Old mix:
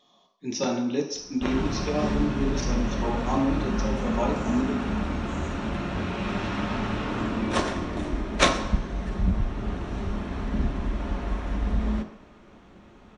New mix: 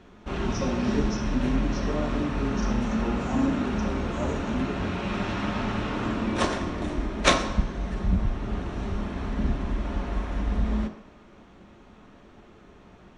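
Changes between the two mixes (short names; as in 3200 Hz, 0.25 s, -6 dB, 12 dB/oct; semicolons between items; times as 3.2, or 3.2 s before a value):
speech: add bell 2100 Hz -14.5 dB 2.9 oct; background: entry -1.15 s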